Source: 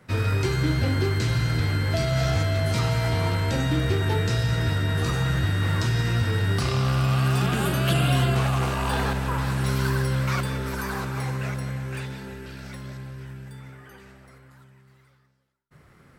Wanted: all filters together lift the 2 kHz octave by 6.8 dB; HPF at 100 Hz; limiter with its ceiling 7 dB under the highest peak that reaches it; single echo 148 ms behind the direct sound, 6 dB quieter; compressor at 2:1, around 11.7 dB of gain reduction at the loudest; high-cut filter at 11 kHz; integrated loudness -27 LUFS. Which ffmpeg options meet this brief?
-af "highpass=100,lowpass=11000,equalizer=f=2000:t=o:g=8.5,acompressor=threshold=0.00891:ratio=2,alimiter=level_in=1.58:limit=0.0631:level=0:latency=1,volume=0.631,aecho=1:1:148:0.501,volume=3.16"

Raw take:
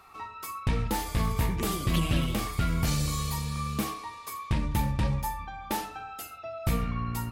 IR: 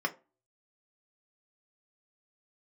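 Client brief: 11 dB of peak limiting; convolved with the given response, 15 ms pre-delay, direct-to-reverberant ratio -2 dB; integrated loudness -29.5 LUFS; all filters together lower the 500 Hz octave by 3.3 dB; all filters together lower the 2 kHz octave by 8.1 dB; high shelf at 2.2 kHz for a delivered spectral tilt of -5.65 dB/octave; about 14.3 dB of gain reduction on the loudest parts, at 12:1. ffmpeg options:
-filter_complex "[0:a]equalizer=f=500:t=o:g=-3.5,equalizer=f=2000:t=o:g=-7,highshelf=f=2200:g=-5.5,acompressor=threshold=0.0141:ratio=12,alimiter=level_in=3.55:limit=0.0631:level=0:latency=1,volume=0.282,asplit=2[s0][s1];[1:a]atrim=start_sample=2205,adelay=15[s2];[s1][s2]afir=irnorm=-1:irlink=0,volume=0.562[s3];[s0][s3]amix=inputs=2:normalize=0,volume=3.98"

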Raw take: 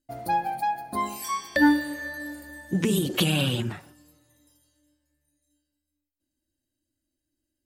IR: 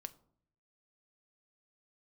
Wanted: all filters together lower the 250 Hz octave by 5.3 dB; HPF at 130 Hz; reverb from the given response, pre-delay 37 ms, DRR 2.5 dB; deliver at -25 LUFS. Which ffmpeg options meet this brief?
-filter_complex "[0:a]highpass=130,equalizer=f=250:t=o:g=-6.5,asplit=2[s0][s1];[1:a]atrim=start_sample=2205,adelay=37[s2];[s1][s2]afir=irnorm=-1:irlink=0,volume=1.26[s3];[s0][s3]amix=inputs=2:normalize=0,volume=1.12"

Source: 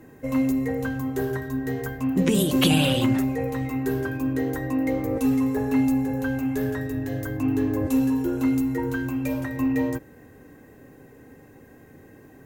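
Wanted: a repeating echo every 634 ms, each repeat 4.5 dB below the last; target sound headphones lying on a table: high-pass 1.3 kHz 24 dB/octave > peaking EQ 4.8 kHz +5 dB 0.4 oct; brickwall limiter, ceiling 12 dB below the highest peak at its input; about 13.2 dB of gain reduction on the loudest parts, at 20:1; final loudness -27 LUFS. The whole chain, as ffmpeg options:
-af "acompressor=threshold=0.0398:ratio=20,alimiter=level_in=2.37:limit=0.0631:level=0:latency=1,volume=0.422,highpass=f=1300:w=0.5412,highpass=f=1300:w=1.3066,equalizer=f=4800:t=o:w=0.4:g=5,aecho=1:1:634|1268|1902|2536|3170|3804|4438|5072|5706:0.596|0.357|0.214|0.129|0.0772|0.0463|0.0278|0.0167|0.01,volume=12.6"

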